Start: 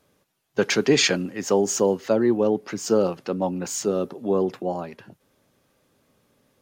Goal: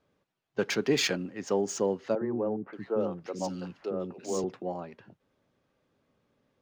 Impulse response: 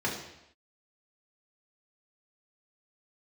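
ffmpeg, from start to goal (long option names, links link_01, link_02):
-filter_complex "[0:a]adynamicsmooth=sensitivity=2.5:basefreq=4700,asettb=1/sr,asplit=3[link_01][link_02][link_03];[link_01]atrim=end=2.154[link_04];[link_02]atrim=start=2.15:end=4.44,asetpts=PTS-STARTPTS,afade=type=in:duration=0.004:curve=qsin,afade=type=out:start_time=2.286:duration=0.004:curve=qsin,acrossover=split=320|1900[link_05][link_06][link_07];[link_05]adelay=60[link_08];[link_07]adelay=580[link_09];[link_08][link_06][link_09]amix=inputs=3:normalize=0,atrim=end_sample=100989[link_10];[link_03]atrim=start=4.436[link_11];[link_04][link_10]acrossfade=duration=0.004:curve1=hsin:curve2=qsin[link_12];[link_12][link_11]acrossfade=duration=0.004:curve1=qsin:curve2=hsin,volume=-7.5dB"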